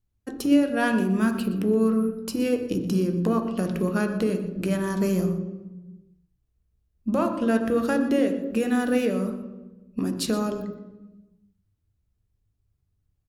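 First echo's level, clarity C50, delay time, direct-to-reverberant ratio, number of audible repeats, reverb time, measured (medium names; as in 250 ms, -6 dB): -16.5 dB, 8.0 dB, 118 ms, 5.5 dB, 1, 1.1 s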